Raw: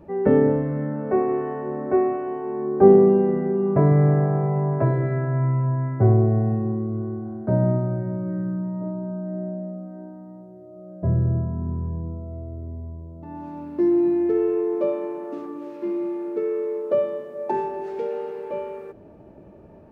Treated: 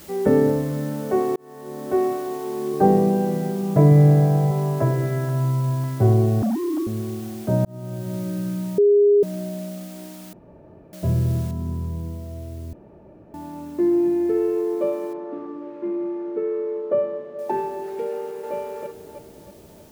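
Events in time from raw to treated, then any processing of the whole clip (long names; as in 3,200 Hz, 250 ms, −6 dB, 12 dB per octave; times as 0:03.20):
0:01.36–0:02.05: fade in
0:02.73–0:04.51: comb filter 6.4 ms
0:05.29–0:05.84: low-pass filter 1,700 Hz 24 dB per octave
0:06.42–0:06.87: three sine waves on the formant tracks
0:07.65–0:08.18: fade in
0:08.78–0:09.23: beep over 409 Hz −11.5 dBFS
0:10.33–0:10.93: fill with room tone
0:11.51: noise floor change −46 dB −56 dB
0:12.73–0:13.34: fill with room tone
0:13.91–0:14.59: notch filter 1,200 Hz, Q 11
0:15.13–0:17.39: low-pass filter 2,000 Hz
0:18.11–0:18.54: delay throw 320 ms, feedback 45%, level −3 dB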